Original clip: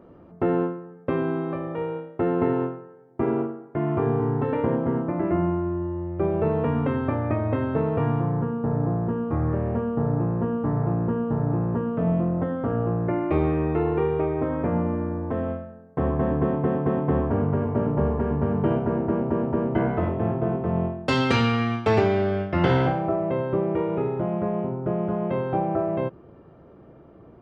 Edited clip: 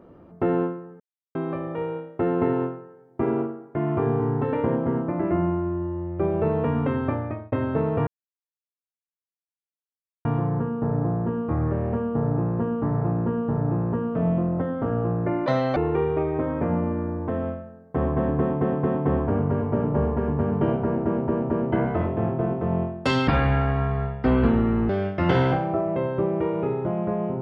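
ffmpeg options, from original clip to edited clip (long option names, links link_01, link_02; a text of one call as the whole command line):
ffmpeg -i in.wav -filter_complex "[0:a]asplit=9[link_01][link_02][link_03][link_04][link_05][link_06][link_07][link_08][link_09];[link_01]atrim=end=1,asetpts=PTS-STARTPTS,afade=type=out:start_time=0.996:duration=0.004:curve=hsin[link_10];[link_02]atrim=start=1:end=1.35,asetpts=PTS-STARTPTS,volume=0[link_11];[link_03]atrim=start=1.35:end=7.52,asetpts=PTS-STARTPTS,afade=type=in:duration=0.004:curve=hsin,afade=type=out:start_time=5.75:duration=0.42[link_12];[link_04]atrim=start=7.52:end=8.07,asetpts=PTS-STARTPTS,afade=type=in:duration=0.004:curve=hsin,afade=type=out:start_time=0.546:duration=0.004:curve=hsin,apad=pad_dur=2.18[link_13];[link_05]atrim=start=8.07:end=13.284,asetpts=PTS-STARTPTS,afade=type=in:duration=0.004:curve=hsin[link_14];[link_06]atrim=start=13.28:end=13.79,asetpts=PTS-STARTPTS,asetrate=74088,aresample=44100[link_15];[link_07]atrim=start=13.786:end=21.304[link_16];[link_08]atrim=start=21.3:end=22.24,asetpts=PTS-STARTPTS,asetrate=25578,aresample=44100,atrim=end_sample=71472,asetpts=PTS-STARTPTS[link_17];[link_09]atrim=start=22.236[link_18];[link_10][link_11][link_12][link_13][link_14]concat=n=5:v=0:a=1[link_19];[link_19][link_15]acrossfade=duration=0.004:curve1=hsin:curve2=hsin[link_20];[link_20][link_16]acrossfade=duration=0.004:curve1=hsin:curve2=hsin[link_21];[link_21][link_17]acrossfade=duration=0.004:curve1=hsin:curve2=hsin[link_22];[link_22][link_18]acrossfade=duration=0.004:curve1=hsin:curve2=hsin" out.wav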